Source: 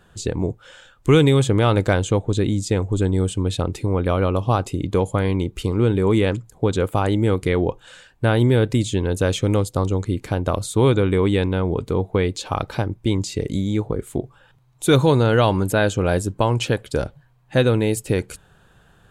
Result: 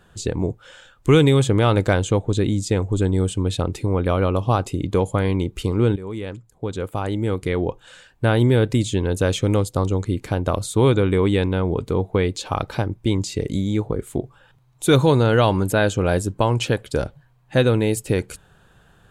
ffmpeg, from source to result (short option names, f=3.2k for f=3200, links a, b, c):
-filter_complex "[0:a]asplit=2[a][b];[a]atrim=end=5.96,asetpts=PTS-STARTPTS,afade=t=out:st=5.956:d=0.004:c=hsin:silence=0.16788[c];[b]atrim=start=5.96,asetpts=PTS-STARTPTS,afade=t=in:d=2.34:silence=0.16788[d];[c][d]concat=n=2:v=0:a=1"